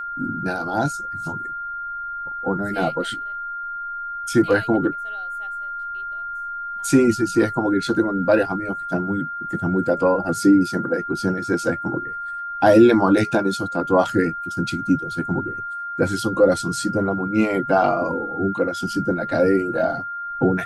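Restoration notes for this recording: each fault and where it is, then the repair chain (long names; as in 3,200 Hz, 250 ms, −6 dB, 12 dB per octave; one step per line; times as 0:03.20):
whistle 1,400 Hz −27 dBFS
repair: notch filter 1,400 Hz, Q 30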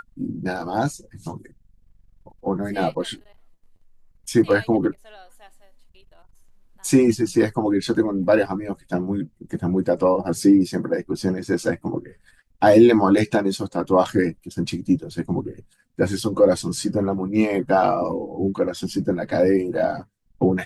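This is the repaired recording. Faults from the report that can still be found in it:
none of them is left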